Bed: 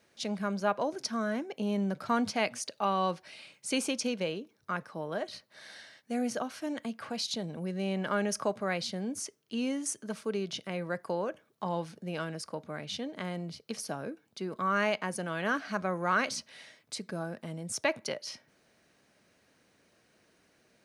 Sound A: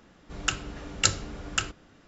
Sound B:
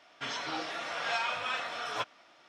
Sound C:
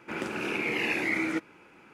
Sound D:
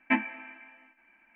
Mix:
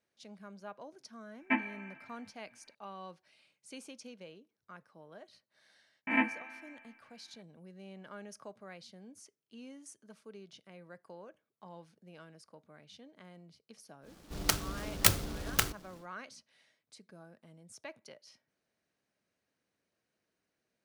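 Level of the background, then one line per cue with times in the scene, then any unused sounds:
bed -17.5 dB
1.40 s: add D -4.5 dB
6.07 s: add D -4.5 dB + reverse spectral sustain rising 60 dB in 0.53 s
14.01 s: add A -1 dB, fades 0.10 s + delay time shaken by noise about 3.6 kHz, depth 0.11 ms
not used: B, C

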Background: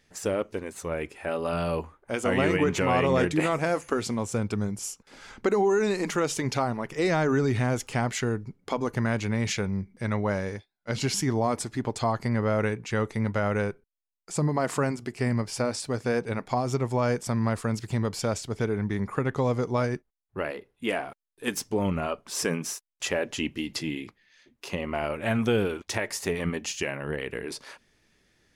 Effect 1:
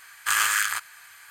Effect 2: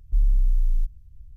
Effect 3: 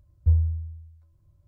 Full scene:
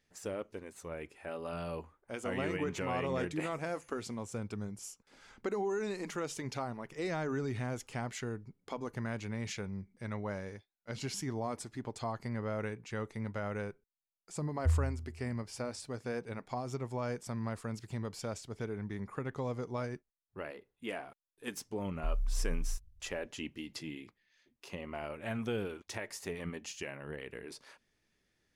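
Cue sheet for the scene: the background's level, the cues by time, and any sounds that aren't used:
background -11.5 dB
14.39 s: add 3 -5 dB + bass shelf 65 Hz -10.5 dB
21.91 s: add 2 -13.5 dB
not used: 1

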